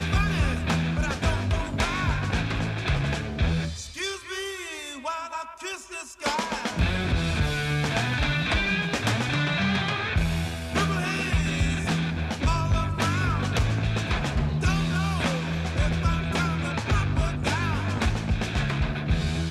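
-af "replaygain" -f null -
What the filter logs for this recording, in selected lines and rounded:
track_gain = +8.6 dB
track_peak = 0.215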